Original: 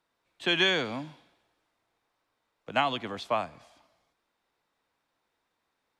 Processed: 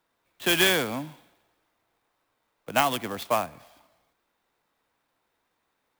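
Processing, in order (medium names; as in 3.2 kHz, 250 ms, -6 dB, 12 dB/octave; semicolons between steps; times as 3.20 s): sampling jitter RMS 0.032 ms; trim +3.5 dB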